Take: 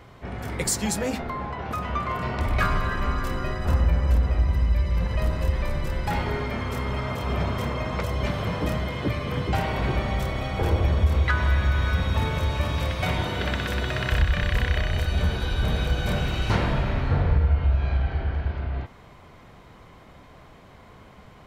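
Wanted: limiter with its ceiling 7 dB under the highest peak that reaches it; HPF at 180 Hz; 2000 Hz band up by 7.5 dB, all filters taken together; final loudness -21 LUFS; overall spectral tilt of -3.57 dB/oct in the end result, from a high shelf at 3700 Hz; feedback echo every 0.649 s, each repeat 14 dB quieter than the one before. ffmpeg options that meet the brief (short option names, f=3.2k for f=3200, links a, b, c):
-af "highpass=180,equalizer=f=2k:t=o:g=8.5,highshelf=f=3.7k:g=3.5,alimiter=limit=-14dB:level=0:latency=1,aecho=1:1:649|1298:0.2|0.0399,volume=5.5dB"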